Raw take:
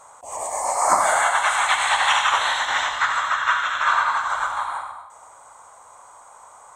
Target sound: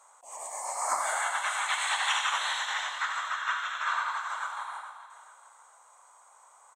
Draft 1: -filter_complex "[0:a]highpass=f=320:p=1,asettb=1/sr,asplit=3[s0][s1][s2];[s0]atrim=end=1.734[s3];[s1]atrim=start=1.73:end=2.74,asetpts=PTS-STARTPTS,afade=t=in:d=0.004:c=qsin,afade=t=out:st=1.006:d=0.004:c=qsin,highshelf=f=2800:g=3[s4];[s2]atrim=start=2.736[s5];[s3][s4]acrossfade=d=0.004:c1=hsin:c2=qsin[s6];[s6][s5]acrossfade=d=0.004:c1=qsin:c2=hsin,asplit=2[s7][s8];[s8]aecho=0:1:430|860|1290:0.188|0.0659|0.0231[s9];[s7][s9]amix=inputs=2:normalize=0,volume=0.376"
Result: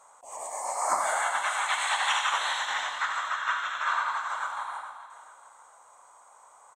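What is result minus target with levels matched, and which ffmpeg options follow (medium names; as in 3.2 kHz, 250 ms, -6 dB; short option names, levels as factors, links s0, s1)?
250 Hz band +6.5 dB
-filter_complex "[0:a]highpass=f=1100:p=1,asettb=1/sr,asplit=3[s0][s1][s2];[s0]atrim=end=1.734[s3];[s1]atrim=start=1.73:end=2.74,asetpts=PTS-STARTPTS,afade=t=in:d=0.004:c=qsin,afade=t=out:st=1.006:d=0.004:c=qsin,highshelf=f=2800:g=3[s4];[s2]atrim=start=2.736[s5];[s3][s4]acrossfade=d=0.004:c1=hsin:c2=qsin[s6];[s6][s5]acrossfade=d=0.004:c1=qsin:c2=hsin,asplit=2[s7][s8];[s8]aecho=0:1:430|860|1290:0.188|0.0659|0.0231[s9];[s7][s9]amix=inputs=2:normalize=0,volume=0.376"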